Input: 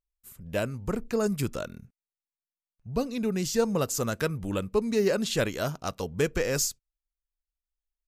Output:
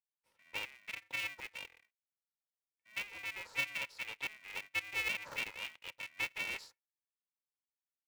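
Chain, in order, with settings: band-swap scrambler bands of 2000 Hz; vowel filter a; polarity switched at an audio rate 210 Hz; gain -2 dB

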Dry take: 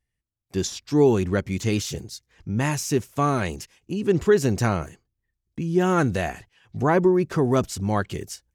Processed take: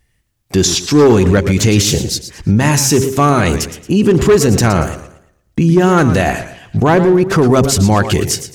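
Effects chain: in parallel at +1.5 dB: vocal rider within 5 dB 2 s; on the sum: de-hum 133.4 Hz, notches 4; hard clip -7.5 dBFS, distortion -16 dB; 6.8–7.3 level quantiser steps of 20 dB; maximiser +14.5 dB; warbling echo 0.114 s, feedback 34%, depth 131 cents, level -11.5 dB; gain -3 dB

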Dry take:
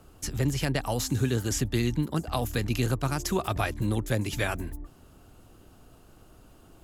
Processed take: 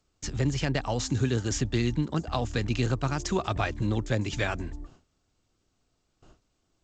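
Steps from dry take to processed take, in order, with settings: gate with hold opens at -41 dBFS; G.722 64 kbps 16000 Hz

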